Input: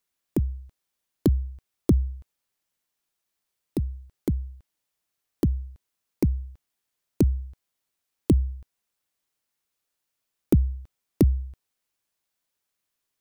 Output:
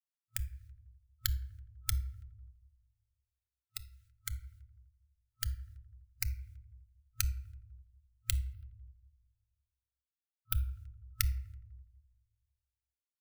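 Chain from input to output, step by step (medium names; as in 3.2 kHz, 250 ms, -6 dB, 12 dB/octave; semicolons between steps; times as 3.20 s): spectral peaks clipped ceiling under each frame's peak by 26 dB; spectral noise reduction 13 dB; FFT band-reject 110–1300 Hz; 8.53–10.53 s: static phaser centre 2 kHz, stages 6; feedback echo behind a low-pass 83 ms, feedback 56%, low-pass 720 Hz, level -12.5 dB; reverberation RT60 0.70 s, pre-delay 4 ms, DRR 10.5 dB; trim -8 dB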